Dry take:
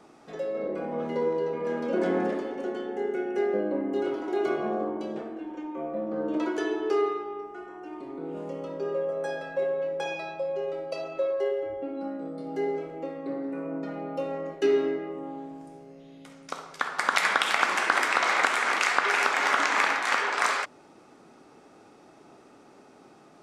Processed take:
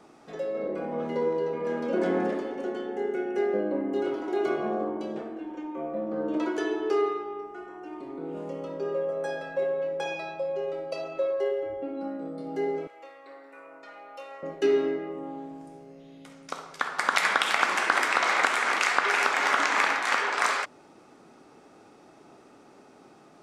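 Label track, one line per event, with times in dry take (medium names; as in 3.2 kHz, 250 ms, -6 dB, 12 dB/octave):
12.870000	14.430000	high-pass 1.1 kHz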